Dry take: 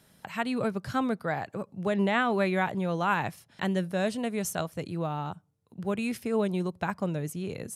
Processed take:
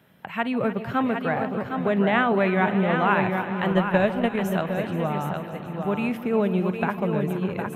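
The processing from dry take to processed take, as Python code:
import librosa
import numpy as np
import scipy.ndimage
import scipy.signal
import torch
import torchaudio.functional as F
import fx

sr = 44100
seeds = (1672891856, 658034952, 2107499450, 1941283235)

y = scipy.signal.sosfilt(scipy.signal.butter(2, 93.0, 'highpass', fs=sr, output='sos'), x)
y = fx.echo_multitap(y, sr, ms=(49, 477, 761), db=(-19.0, -16.5, -6.0))
y = fx.transient(y, sr, attack_db=11, sustain_db=-7, at=(3.68, 4.36))
y = fx.band_shelf(y, sr, hz=6800.0, db=-16.0, octaves=1.7)
y = fx.echo_alternate(y, sr, ms=150, hz=840.0, feedback_pct=85, wet_db=-12.0)
y = y * 10.0 ** (4.5 / 20.0)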